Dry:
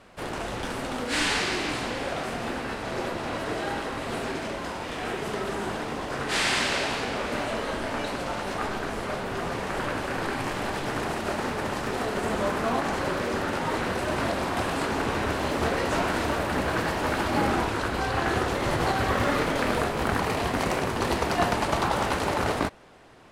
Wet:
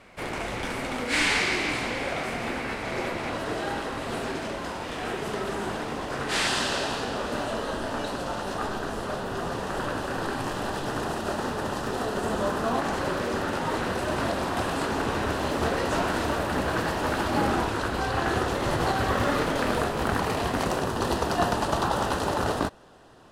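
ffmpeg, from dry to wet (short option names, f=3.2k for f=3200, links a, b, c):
-af "asetnsamples=n=441:p=0,asendcmd='3.3 equalizer g -2.5;6.47 equalizer g -13;12.75 equalizer g -6;20.67 equalizer g -14',equalizer=f=2.2k:t=o:w=0.27:g=8.5"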